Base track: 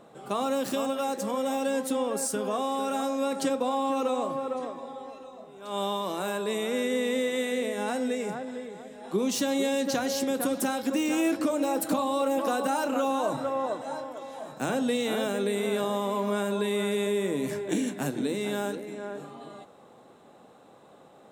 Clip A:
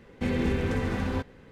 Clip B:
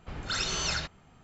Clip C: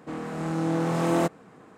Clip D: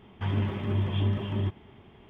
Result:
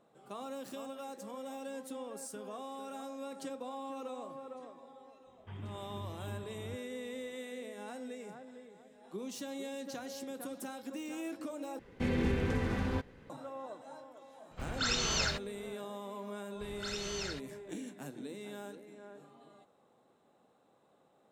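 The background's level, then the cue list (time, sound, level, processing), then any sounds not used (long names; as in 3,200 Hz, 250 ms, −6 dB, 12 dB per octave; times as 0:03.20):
base track −15 dB
0:05.26: mix in D −17 dB
0:11.79: overwrite with A −4.5 dB
0:14.51: mix in B −1.5 dB
0:16.53: mix in B −10 dB + parametric band 1,100 Hz −4 dB 0.35 octaves
not used: C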